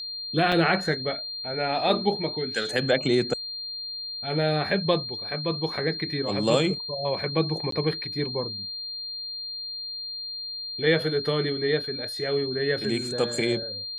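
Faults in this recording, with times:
whistle 4,200 Hz −32 dBFS
0:00.52: drop-out 4.9 ms
0:07.71–0:07.72: drop-out 13 ms

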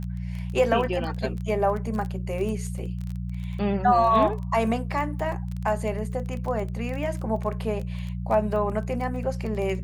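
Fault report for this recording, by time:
surface crackle 18 per second −30 dBFS
mains hum 60 Hz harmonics 3 −31 dBFS

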